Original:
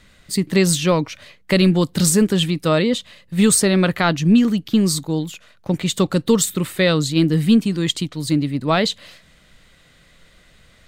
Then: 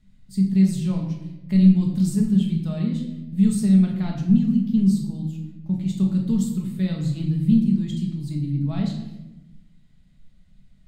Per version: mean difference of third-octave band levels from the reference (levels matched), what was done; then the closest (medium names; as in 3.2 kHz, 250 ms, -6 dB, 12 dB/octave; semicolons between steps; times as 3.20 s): 11.0 dB: FFT filter 210 Hz 0 dB, 510 Hz -21 dB, 720 Hz -13 dB, 1.2 kHz -20 dB, 4.7 kHz -15 dB; simulated room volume 380 m³, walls mixed, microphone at 1.4 m; trim -7 dB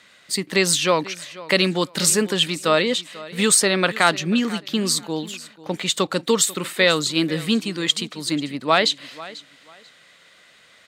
6.0 dB: frequency weighting A; on a send: feedback delay 491 ms, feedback 23%, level -18.5 dB; on the sum: trim +2 dB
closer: second